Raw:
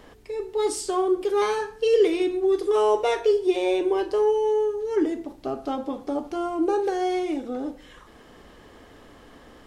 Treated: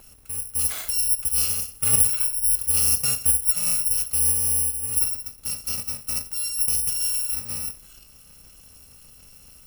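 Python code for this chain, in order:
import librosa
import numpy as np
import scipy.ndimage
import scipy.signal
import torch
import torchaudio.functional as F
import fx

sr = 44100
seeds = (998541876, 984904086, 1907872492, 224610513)

y = fx.bit_reversed(x, sr, seeds[0], block=128)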